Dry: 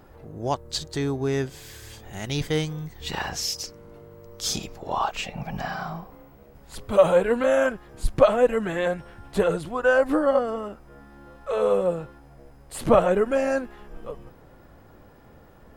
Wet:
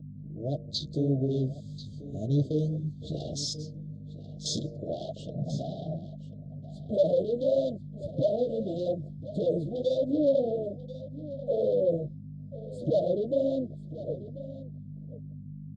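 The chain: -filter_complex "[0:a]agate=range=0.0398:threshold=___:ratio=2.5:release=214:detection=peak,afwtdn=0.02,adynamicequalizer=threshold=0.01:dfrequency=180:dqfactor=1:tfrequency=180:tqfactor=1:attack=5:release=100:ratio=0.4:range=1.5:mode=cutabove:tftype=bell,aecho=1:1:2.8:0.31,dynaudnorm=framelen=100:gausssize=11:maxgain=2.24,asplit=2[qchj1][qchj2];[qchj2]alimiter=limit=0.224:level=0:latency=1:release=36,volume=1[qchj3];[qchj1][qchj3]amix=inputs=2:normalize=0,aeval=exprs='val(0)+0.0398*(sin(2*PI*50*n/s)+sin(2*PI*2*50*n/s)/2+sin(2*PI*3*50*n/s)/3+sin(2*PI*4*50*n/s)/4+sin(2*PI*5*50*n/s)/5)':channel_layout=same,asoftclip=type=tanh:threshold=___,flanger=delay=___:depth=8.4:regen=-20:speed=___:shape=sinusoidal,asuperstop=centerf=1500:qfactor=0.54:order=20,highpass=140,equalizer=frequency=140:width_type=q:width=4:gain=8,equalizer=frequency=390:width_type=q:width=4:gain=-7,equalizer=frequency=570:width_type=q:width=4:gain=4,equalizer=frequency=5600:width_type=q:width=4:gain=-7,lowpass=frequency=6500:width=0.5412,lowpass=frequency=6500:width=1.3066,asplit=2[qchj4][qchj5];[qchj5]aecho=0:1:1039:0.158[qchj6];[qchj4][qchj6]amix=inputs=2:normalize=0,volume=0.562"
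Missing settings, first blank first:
0.01, 0.224, 6.3, 1.7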